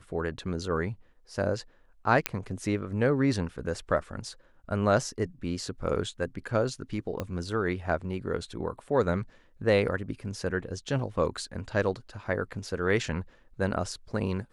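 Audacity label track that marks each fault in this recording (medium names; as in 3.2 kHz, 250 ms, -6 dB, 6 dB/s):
2.260000	2.260000	pop -6 dBFS
7.200000	7.200000	pop -18 dBFS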